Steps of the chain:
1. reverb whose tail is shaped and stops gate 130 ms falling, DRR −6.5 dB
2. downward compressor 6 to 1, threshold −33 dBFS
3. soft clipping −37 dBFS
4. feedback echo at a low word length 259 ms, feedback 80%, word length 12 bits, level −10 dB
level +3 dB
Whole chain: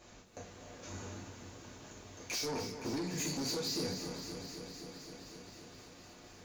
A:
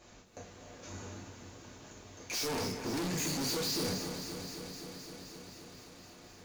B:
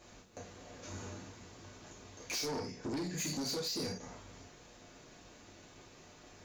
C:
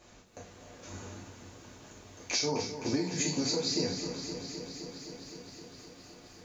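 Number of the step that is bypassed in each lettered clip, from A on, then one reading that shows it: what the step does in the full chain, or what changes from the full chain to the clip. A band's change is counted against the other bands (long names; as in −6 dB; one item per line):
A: 2, average gain reduction 9.5 dB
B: 4, change in crest factor −4.5 dB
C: 3, distortion level −8 dB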